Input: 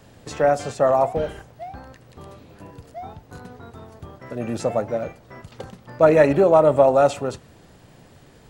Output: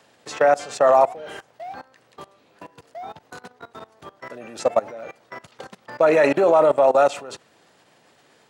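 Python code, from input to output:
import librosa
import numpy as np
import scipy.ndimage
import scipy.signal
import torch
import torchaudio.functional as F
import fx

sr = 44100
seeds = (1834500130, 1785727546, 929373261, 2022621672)

y = fx.level_steps(x, sr, step_db=20)
y = fx.weighting(y, sr, curve='A')
y = y * librosa.db_to_amplitude(8.0)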